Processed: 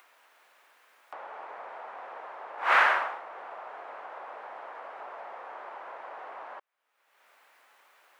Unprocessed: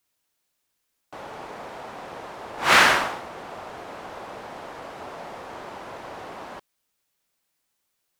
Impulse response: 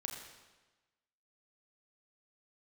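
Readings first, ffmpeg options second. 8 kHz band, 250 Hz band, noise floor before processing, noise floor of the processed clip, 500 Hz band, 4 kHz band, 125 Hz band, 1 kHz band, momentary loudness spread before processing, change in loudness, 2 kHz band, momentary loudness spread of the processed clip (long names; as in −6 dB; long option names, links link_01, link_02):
below −20 dB, −20.0 dB, −77 dBFS, −72 dBFS, −7.5 dB, −15.0 dB, below −30 dB, −4.0 dB, 21 LU, −13.5 dB, −5.5 dB, 19 LU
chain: -filter_complex "[0:a]highpass=250,acrossover=split=530 2300:gain=0.0794 1 0.0794[link_01][link_02][link_03];[link_01][link_02][link_03]amix=inputs=3:normalize=0,acompressor=mode=upward:threshold=-35dB:ratio=2.5,volume=-3dB"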